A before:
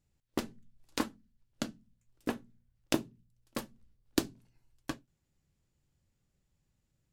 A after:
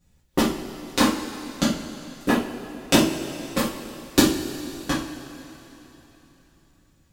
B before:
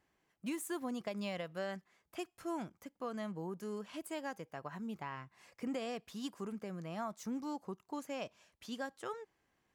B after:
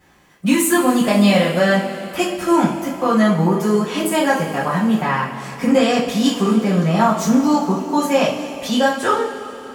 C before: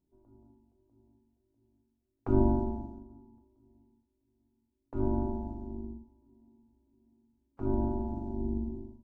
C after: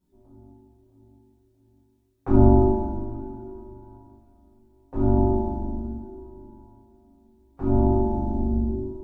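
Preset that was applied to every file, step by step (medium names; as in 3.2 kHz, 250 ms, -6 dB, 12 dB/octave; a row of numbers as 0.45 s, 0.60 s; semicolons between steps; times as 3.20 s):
two-slope reverb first 0.37 s, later 3.6 s, from -18 dB, DRR -9.5 dB; peak normalisation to -2 dBFS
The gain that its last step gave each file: +6.0 dB, +15.5 dB, +0.5 dB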